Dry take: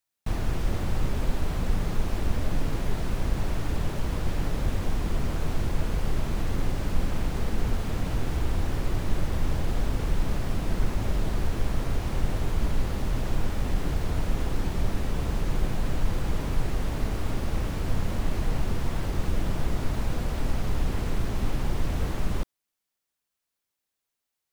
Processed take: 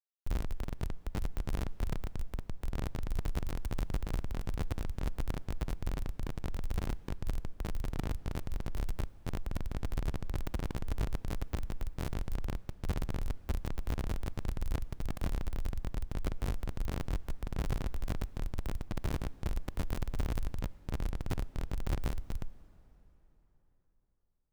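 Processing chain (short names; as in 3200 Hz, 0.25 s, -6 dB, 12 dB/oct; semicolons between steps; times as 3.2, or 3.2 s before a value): negative-ratio compressor -26 dBFS, ratio -0.5; Schmitt trigger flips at -24 dBFS; added harmonics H 8 -7 dB, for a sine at -21 dBFS; limiter -27 dBFS, peak gain reduction 10.5 dB; reverb RT60 4.1 s, pre-delay 8 ms, DRR 19 dB; gain +1.5 dB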